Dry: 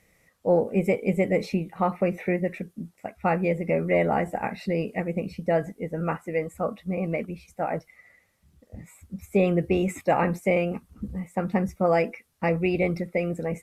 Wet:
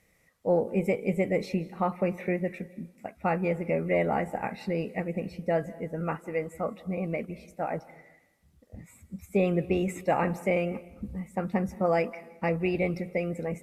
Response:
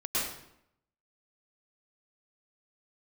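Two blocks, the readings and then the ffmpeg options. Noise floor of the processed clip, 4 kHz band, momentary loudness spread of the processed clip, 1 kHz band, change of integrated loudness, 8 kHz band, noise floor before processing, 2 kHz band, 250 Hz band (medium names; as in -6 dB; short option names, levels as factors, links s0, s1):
-65 dBFS, -3.5 dB, 11 LU, -3.5 dB, -3.5 dB, no reading, -65 dBFS, -3.5 dB, -3.5 dB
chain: -filter_complex "[0:a]asplit=2[s0][s1];[1:a]atrim=start_sample=2205,asetrate=35721,aresample=44100,adelay=33[s2];[s1][s2]afir=irnorm=-1:irlink=0,volume=0.0398[s3];[s0][s3]amix=inputs=2:normalize=0,volume=0.668"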